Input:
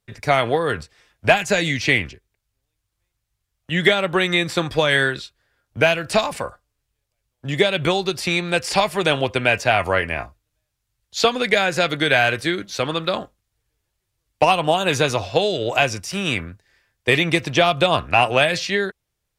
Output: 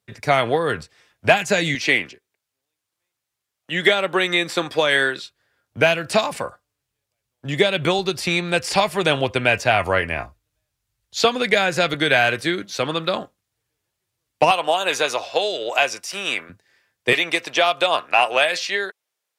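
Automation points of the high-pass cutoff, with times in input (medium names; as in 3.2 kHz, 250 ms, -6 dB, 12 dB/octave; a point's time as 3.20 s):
100 Hz
from 1.75 s 260 Hz
from 5.22 s 110 Hz
from 7.99 s 43 Hz
from 11.94 s 120 Hz
from 14.51 s 480 Hz
from 16.49 s 150 Hz
from 17.13 s 500 Hz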